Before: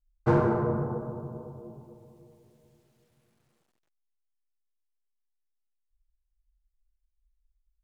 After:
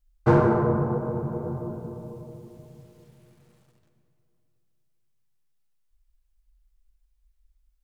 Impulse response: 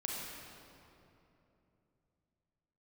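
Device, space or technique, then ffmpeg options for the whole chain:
ducked reverb: -filter_complex "[0:a]asplit=3[s0][s1][s2];[1:a]atrim=start_sample=2205[s3];[s1][s3]afir=irnorm=-1:irlink=0[s4];[s2]apad=whole_len=345369[s5];[s4][s5]sidechaincompress=threshold=0.0141:ratio=8:attack=16:release=390,volume=0.668[s6];[s0][s6]amix=inputs=2:normalize=0,volume=1.58"

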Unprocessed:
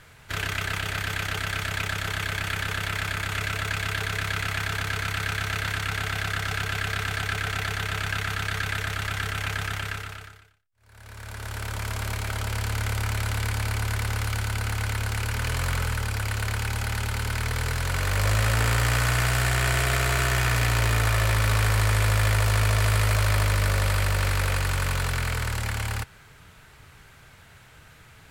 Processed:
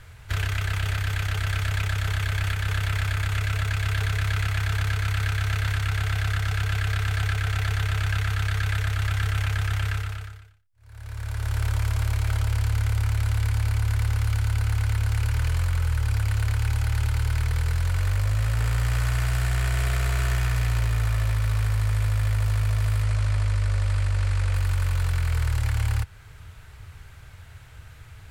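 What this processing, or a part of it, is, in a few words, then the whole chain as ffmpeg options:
car stereo with a boomy subwoofer: -filter_complex "[0:a]lowshelf=f=130:t=q:w=1.5:g=10,alimiter=limit=0.178:level=0:latency=1:release=307,asettb=1/sr,asplit=3[s0][s1][s2];[s0]atrim=end=23.034[s3];[s1]atrim=start=23.03:end=24.54,asetpts=PTS-STARTPTS,afade=t=in:d=0.004:c=qsin,afade=t=out:st=1.506:d=0.004:c=qsin,lowpass=f=9800:w=0.5412,lowpass=f=9800:w=1.3066[s4];[s2]atrim=start=24.536[s5];[s3][s4]acrossfade=d=0.004:c1=hsin:c2=qsin[s6];[s6][s5]acrossfade=d=0.004:c1=qsin:c2=hsin,volume=0.891"

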